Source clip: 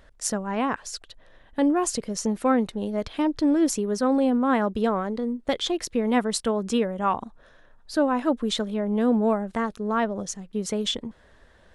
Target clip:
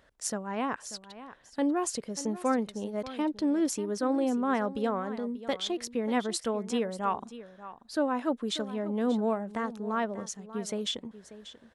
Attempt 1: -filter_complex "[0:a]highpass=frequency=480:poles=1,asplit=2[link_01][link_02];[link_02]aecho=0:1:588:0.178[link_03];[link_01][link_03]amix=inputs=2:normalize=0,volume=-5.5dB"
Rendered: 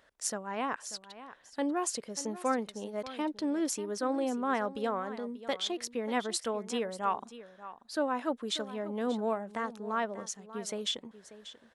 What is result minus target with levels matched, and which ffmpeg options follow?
125 Hz band −3.5 dB
-filter_complex "[0:a]highpass=frequency=140:poles=1,asplit=2[link_01][link_02];[link_02]aecho=0:1:588:0.178[link_03];[link_01][link_03]amix=inputs=2:normalize=0,volume=-5.5dB"

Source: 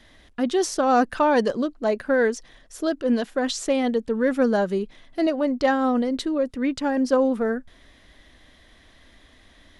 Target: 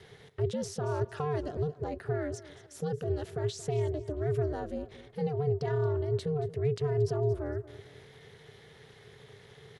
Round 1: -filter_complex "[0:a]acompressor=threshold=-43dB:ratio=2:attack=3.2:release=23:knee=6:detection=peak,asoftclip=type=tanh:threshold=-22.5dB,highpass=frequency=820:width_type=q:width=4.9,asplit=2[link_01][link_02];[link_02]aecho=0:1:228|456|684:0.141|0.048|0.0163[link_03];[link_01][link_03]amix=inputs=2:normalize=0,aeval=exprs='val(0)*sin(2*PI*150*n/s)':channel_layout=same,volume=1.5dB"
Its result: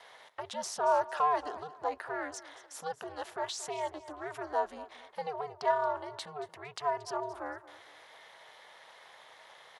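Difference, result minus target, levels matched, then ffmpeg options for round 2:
1,000 Hz band +12.0 dB; downward compressor: peak gain reduction −3.5 dB
-filter_complex "[0:a]acompressor=threshold=-50.5dB:ratio=2:attack=3.2:release=23:knee=6:detection=peak,asoftclip=type=tanh:threshold=-22.5dB,highpass=frequency=270:width_type=q:width=4.9,asplit=2[link_01][link_02];[link_02]aecho=0:1:228|456|684:0.141|0.048|0.0163[link_03];[link_01][link_03]amix=inputs=2:normalize=0,aeval=exprs='val(0)*sin(2*PI*150*n/s)':channel_layout=same,volume=1.5dB"

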